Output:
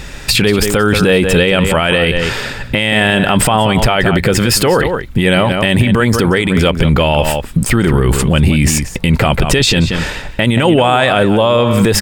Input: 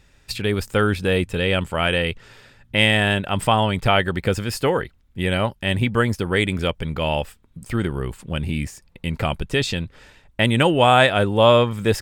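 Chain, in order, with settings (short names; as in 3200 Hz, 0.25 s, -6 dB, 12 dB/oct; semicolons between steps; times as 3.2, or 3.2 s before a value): bell 94 Hz -11.5 dB 0.21 oct; compressor, threshold -26 dBFS, peak gain reduction 16 dB; outdoor echo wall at 31 m, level -13 dB; maximiser +28 dB; gain -1 dB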